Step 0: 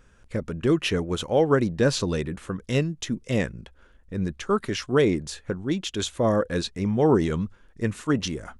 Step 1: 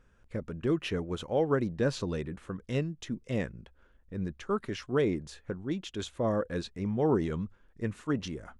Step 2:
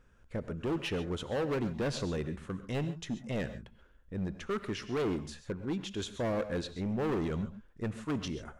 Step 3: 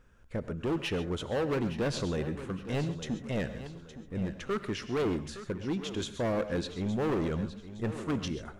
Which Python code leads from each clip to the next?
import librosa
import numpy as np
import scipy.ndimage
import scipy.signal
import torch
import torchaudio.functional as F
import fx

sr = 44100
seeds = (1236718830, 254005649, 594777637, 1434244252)

y1 = fx.high_shelf(x, sr, hz=3600.0, db=-8.0)
y1 = F.gain(torch.from_numpy(y1), -7.0).numpy()
y2 = np.clip(10.0 ** (29.0 / 20.0) * y1, -1.0, 1.0) / 10.0 ** (29.0 / 20.0)
y2 = fx.rev_gated(y2, sr, seeds[0], gate_ms=160, shape='rising', drr_db=11.5)
y3 = fx.echo_feedback(y2, sr, ms=865, feedback_pct=38, wet_db=-13)
y3 = F.gain(torch.from_numpy(y3), 2.0).numpy()